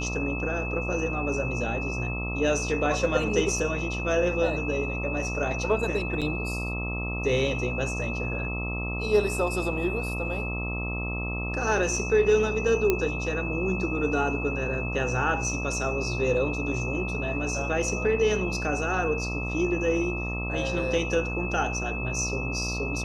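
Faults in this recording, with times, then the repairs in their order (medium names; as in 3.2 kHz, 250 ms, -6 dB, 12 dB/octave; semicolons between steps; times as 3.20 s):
buzz 60 Hz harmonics 22 -32 dBFS
whine 2.6 kHz -33 dBFS
6.21–6.22 s: dropout 7 ms
12.90 s: pop -9 dBFS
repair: de-click; band-stop 2.6 kHz, Q 30; de-hum 60 Hz, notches 22; interpolate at 6.21 s, 7 ms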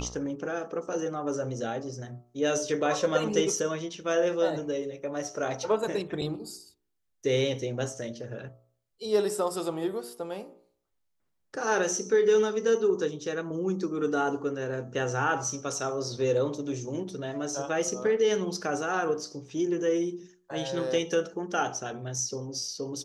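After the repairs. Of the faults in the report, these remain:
nothing left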